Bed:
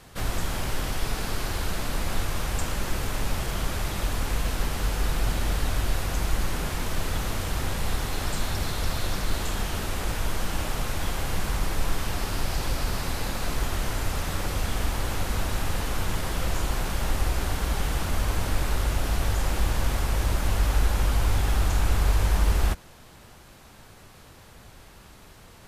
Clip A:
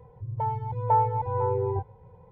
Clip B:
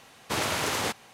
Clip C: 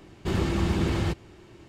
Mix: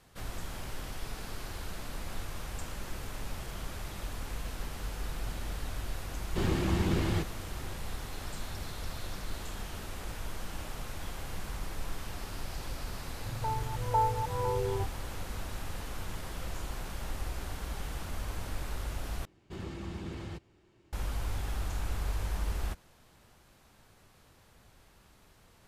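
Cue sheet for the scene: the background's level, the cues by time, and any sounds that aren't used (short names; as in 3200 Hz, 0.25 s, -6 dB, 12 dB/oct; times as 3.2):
bed -11.5 dB
6.1 add C -4 dB + shaped vibrato saw up 5.5 Hz, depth 100 cents
13.04 add A -5.5 dB
19.25 replace with C -15 dB
not used: B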